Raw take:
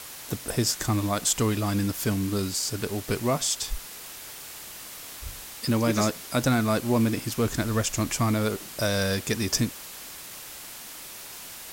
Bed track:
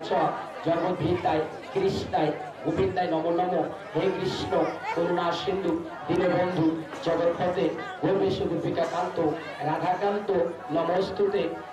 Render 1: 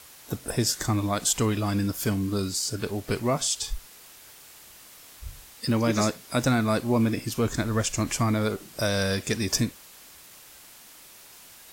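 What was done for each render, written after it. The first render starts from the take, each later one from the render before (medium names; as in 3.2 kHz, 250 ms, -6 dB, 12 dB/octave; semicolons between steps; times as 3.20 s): noise print and reduce 8 dB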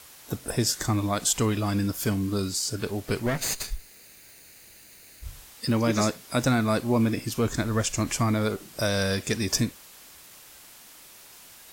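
3.26–5.25 s: comb filter that takes the minimum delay 0.45 ms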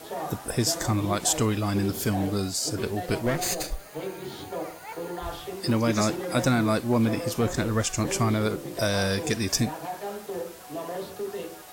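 add bed track -9 dB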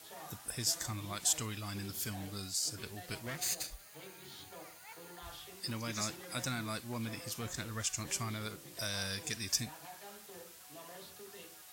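high-pass 44 Hz; amplifier tone stack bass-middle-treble 5-5-5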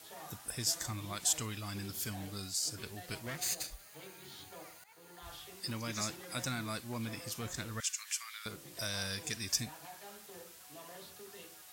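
4.84–5.34 s: fade in, from -14 dB; 7.80–8.46 s: high-pass 1.4 kHz 24 dB/octave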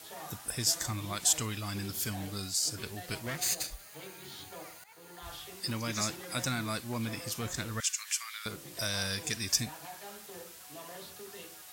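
trim +4.5 dB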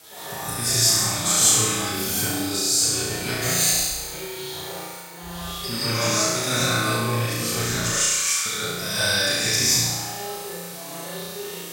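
on a send: flutter echo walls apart 5.9 m, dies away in 1.2 s; on the sum: gated-style reverb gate 200 ms rising, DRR -7.5 dB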